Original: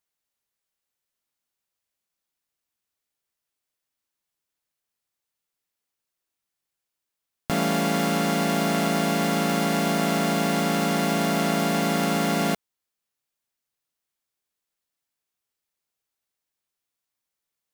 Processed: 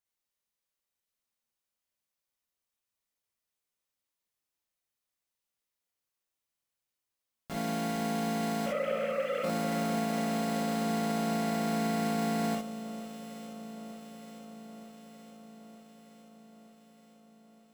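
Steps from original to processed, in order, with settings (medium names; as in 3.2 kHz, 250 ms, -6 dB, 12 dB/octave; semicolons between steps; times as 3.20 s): 8.66–9.44 s: formants replaced by sine waves; peak limiter -22.5 dBFS, peak gain reduction 11 dB; echo whose repeats swap between lows and highs 459 ms, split 1.5 kHz, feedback 80%, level -11 dB; gated-style reverb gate 80 ms rising, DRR -0.5 dB; trim -7.5 dB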